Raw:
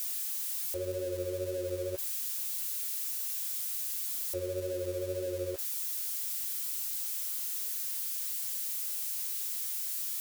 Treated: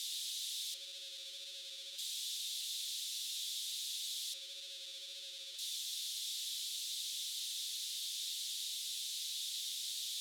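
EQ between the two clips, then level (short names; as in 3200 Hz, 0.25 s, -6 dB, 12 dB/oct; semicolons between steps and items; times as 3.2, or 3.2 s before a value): ladder band-pass 3900 Hz, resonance 70%; +13.0 dB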